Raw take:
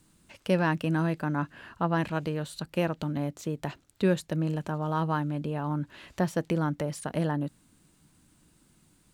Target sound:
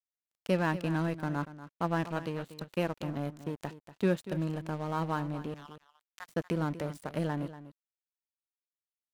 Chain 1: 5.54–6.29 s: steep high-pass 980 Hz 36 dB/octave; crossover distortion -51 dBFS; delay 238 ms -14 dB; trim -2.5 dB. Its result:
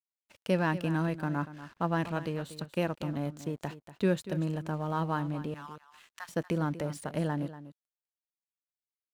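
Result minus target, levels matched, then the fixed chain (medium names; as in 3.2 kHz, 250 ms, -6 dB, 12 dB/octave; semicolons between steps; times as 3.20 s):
crossover distortion: distortion -10 dB
5.54–6.29 s: steep high-pass 980 Hz 36 dB/octave; crossover distortion -39.5 dBFS; delay 238 ms -14 dB; trim -2.5 dB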